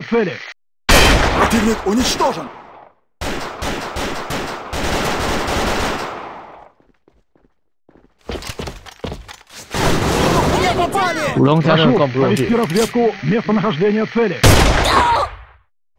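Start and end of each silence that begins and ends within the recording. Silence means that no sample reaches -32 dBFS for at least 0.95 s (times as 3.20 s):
6.67–8.29 s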